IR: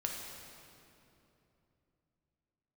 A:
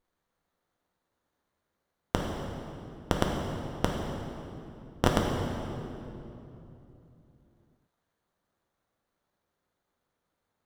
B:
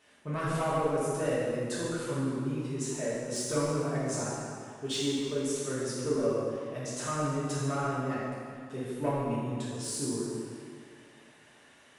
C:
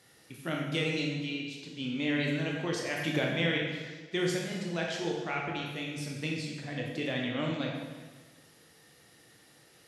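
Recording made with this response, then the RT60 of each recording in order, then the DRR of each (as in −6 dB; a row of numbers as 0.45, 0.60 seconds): A; 3.0, 2.1, 1.4 seconds; −0.5, −9.5, −1.5 decibels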